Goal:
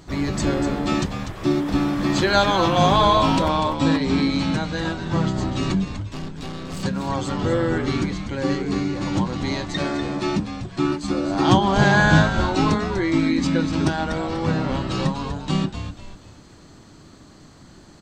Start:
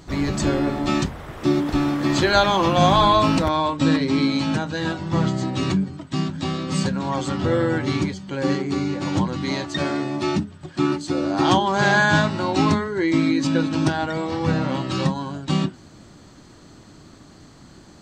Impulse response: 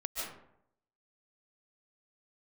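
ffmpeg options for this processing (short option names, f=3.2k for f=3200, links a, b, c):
-filter_complex "[0:a]asettb=1/sr,asplit=3[a][b][c];[a]atrim=end=5.974[d];[b]atrim=start=5.97:end=6.83,asetpts=PTS-STARTPTS,afade=t=in:d=0.004:c=qsin,afade=t=out:st=0.856:d=0.004:c=qsin,aeval=exprs='(tanh(25.1*val(0)+0.75)-tanh(0.75))/25.1':c=same[e];[c]atrim=start=6.826[f];[d][e]acrossfade=d=0.004:c1=hsin:c2=qsin[g];[g][f]acrossfade=d=0.004:c1=qsin:c2=hsin,asettb=1/sr,asplit=3[h][i][j];[h]atrim=end=11.474[k];[i]atrim=start=11.47:end=12.23,asetpts=PTS-STARTPTS,afade=t=in:d=0.004:c=qsin,afade=t=out:st=0.756:d=0.004:c=qsin,lowshelf=f=190:g=11[l];[j]atrim=start=12.226[m];[k][l]acrossfade=d=0.004:c1=hsin:c2=qsin[n];[n][m]acrossfade=d=0.004:c1=qsin:c2=hsin,asplit=5[o][p][q][r][s];[p]adelay=245,afreqshift=-89,volume=-8.5dB[t];[q]adelay=490,afreqshift=-178,volume=-17.6dB[u];[r]adelay=735,afreqshift=-267,volume=-26.7dB[v];[s]adelay=980,afreqshift=-356,volume=-35.9dB[w];[o][t][u][v][w]amix=inputs=5:normalize=0,volume=-1dB"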